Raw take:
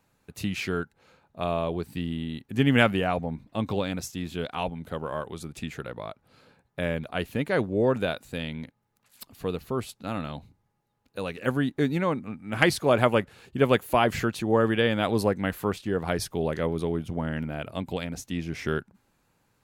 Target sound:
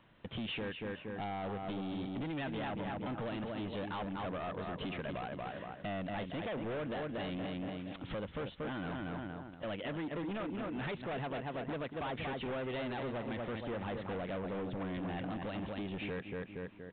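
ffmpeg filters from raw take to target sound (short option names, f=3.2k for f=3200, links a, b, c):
-filter_complex "[0:a]dynaudnorm=f=530:g=11:m=6dB,asplit=2[a][b];[b]adelay=272,lowpass=f=2.3k:p=1,volume=-8dB,asplit=2[c][d];[d]adelay=272,lowpass=f=2.3k:p=1,volume=0.36,asplit=2[e][f];[f]adelay=272,lowpass=f=2.3k:p=1,volume=0.36,asplit=2[g][h];[h]adelay=272,lowpass=f=2.3k:p=1,volume=0.36[i];[c][e][g][i]amix=inputs=4:normalize=0[j];[a][j]amix=inputs=2:normalize=0,acompressor=threshold=-37dB:ratio=4,aresample=16000,asoftclip=type=hard:threshold=-40dB,aresample=44100,asetrate=51156,aresample=44100,volume=4dB" -ar 8000 -c:a pcm_alaw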